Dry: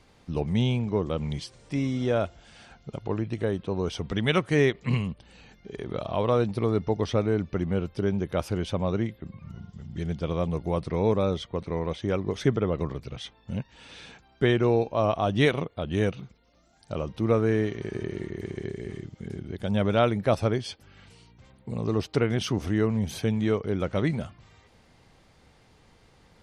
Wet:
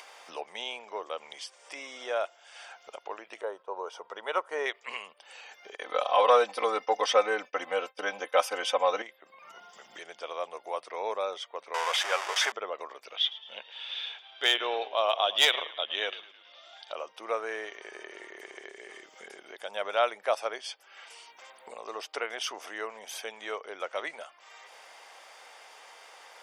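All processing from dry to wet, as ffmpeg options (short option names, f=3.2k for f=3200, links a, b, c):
-filter_complex "[0:a]asettb=1/sr,asplit=3[a][b][c];[a]atrim=end=3.414[d];[b]atrim=start=3.41:end=4.66,asetpts=PTS-STARTPTS,afade=t=in:d=0.004:c=qsin,afade=t=out:st=1.246:d=0.004:c=qsin,aecho=1:1:2.1:0.33,atrim=end_sample=55125,agate=range=-10dB:threshold=-44dB:ratio=16:release=100:detection=peak,highshelf=f=1.6k:t=q:w=1.5:g=-9.5[e];[c]atrim=start=4.656[f];[d][e]acrossfade=d=0.004:c1=hsin:c2=qsin[g];[g][f]acrossfade=d=0.004:c1=qsin:c2=hsin,asettb=1/sr,asplit=3[h][i][j];[h]atrim=end=5.754[k];[i]atrim=start=5.75:end=9.02,asetpts=PTS-STARTPTS,afade=t=in:d=0.004:c=qsin,afade=t=out:st=3.266:d=0.004:c=qsin,aecho=1:1:3.9:1,atrim=end_sample=144207,agate=range=-33dB:threshold=-34dB:ratio=3:release=100:detection=peak,acontrast=65[l];[j]atrim=start=9.016[m];[k][l]acrossfade=d=0.004:c1=hsin:c2=qsin[n];[n][m]acrossfade=d=0.004:c1=qsin:c2=hsin,asettb=1/sr,asplit=3[o][p][q];[o]atrim=end=11.744[r];[p]atrim=start=11.74:end=12.52,asetpts=PTS-STARTPTS,afade=t=in:d=0.004:c=qsin,afade=t=out:st=0.776:d=0.004:c=qsin,aeval=exprs='val(0)+0.5*0.0422*sgn(val(0))':c=same,acontrast=66,highpass=710,lowpass=6.8k[s];[q]atrim=start=12.516[t];[r][s]acrossfade=d=0.004:c1=hsin:c2=qsin[u];[u][t]acrossfade=d=0.004:c1=qsin:c2=hsin,asettb=1/sr,asplit=3[v][w][x];[v]atrim=end=13.154[y];[w]atrim=start=13.15:end=16.93,asetpts=PTS-STARTPTS,afade=t=in:d=0.004:c=qsin,afade=t=out:st=3.776:d=0.004:c=qsin,lowpass=f=3.5k:t=q:w=6.4,asplit=5[z][aa][ab][ac][ad];[aa]adelay=108,afreqshift=-52,volume=-16.5dB[ae];[ab]adelay=216,afreqshift=-104,volume=-23.4dB[af];[ac]adelay=324,afreqshift=-156,volume=-30.4dB[ag];[ad]adelay=432,afreqshift=-208,volume=-37.3dB[ah];[z][ae][af][ag][ah]amix=inputs=5:normalize=0,atrim=end_sample=166698,volume=11.5dB,asoftclip=hard,volume=-11.5dB[ai];[x]atrim=start=16.926[aj];[y][ai]acrossfade=d=0.004:c1=hsin:c2=qsin[ak];[ak][aj]acrossfade=d=0.004:c1=qsin:c2=hsin,highpass=f=610:w=0.5412,highpass=f=610:w=1.3066,bandreject=f=4.1k:w=6.6,acompressor=mode=upward:threshold=-39dB:ratio=2.5"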